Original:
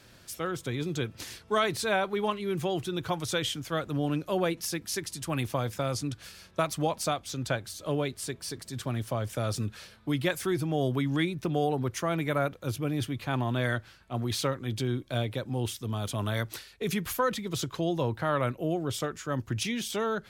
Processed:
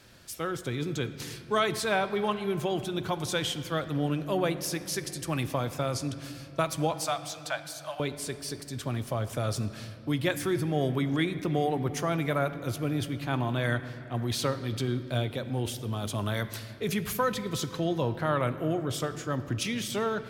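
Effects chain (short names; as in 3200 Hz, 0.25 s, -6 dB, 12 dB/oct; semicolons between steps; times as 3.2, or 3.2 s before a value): 6.94–8 steep high-pass 590 Hz 96 dB/oct; on a send: reverb RT60 3.0 s, pre-delay 13 ms, DRR 11 dB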